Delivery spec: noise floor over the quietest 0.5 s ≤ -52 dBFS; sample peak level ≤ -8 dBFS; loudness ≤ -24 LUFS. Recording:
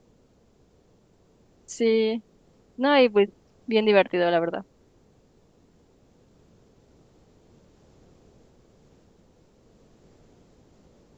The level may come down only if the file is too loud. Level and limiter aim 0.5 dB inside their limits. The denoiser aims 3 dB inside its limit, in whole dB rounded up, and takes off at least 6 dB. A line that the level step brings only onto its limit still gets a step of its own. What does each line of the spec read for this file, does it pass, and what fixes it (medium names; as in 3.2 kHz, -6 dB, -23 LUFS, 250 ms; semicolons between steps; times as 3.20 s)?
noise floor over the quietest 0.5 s -60 dBFS: pass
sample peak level -5.5 dBFS: fail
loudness -23.0 LUFS: fail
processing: trim -1.5 dB; peak limiter -8.5 dBFS